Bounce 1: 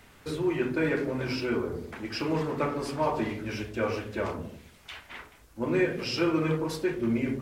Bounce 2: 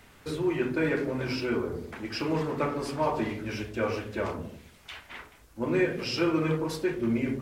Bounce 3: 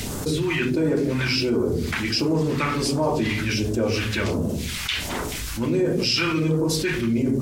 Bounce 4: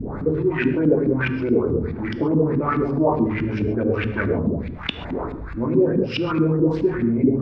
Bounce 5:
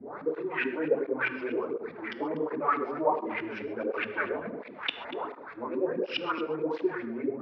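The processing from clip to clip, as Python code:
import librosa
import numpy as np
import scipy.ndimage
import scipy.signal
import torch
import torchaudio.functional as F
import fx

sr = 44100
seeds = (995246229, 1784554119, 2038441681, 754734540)

y1 = x
y2 = fx.low_shelf(y1, sr, hz=91.0, db=-7.5)
y2 = fx.phaser_stages(y2, sr, stages=2, low_hz=470.0, high_hz=2100.0, hz=1.4, feedback_pct=45)
y2 = fx.env_flatten(y2, sr, amount_pct=70)
y2 = y2 * 10.0 ** (3.5 / 20.0)
y3 = fx.wiener(y2, sr, points=15)
y3 = fx.filter_lfo_lowpass(y3, sr, shape='saw_up', hz=4.7, low_hz=220.0, high_hz=3000.0, q=2.8)
y3 = fx.rev_gated(y3, sr, seeds[0], gate_ms=160, shape='flat', drr_db=10.5)
y4 = fx.bandpass_edges(y3, sr, low_hz=570.0, high_hz=3700.0)
y4 = y4 + 10.0 ** (-15.5 / 20.0) * np.pad(y4, (int(240 * sr / 1000.0), 0))[:len(y4)]
y4 = fx.flanger_cancel(y4, sr, hz=1.4, depth_ms=7.1)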